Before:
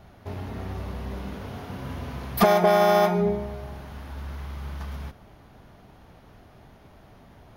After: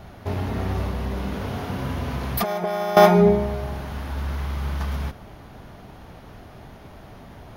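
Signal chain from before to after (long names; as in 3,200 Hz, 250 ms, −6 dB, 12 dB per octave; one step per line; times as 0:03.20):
0:00.85–0:02.97: downward compressor 16 to 1, threshold −30 dBFS, peak gain reduction 17.5 dB
level +8 dB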